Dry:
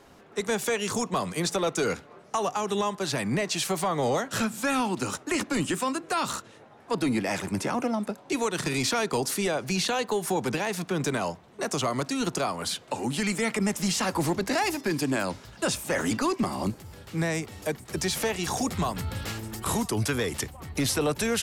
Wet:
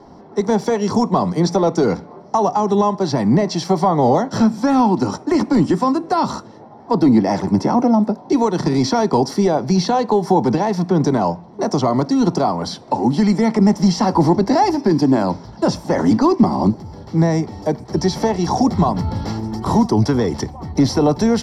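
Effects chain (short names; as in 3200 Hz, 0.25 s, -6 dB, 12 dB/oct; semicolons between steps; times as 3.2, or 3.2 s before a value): LPF 2500 Hz 6 dB/oct; reverb RT60 0.40 s, pre-delay 3 ms, DRR 17.5 dB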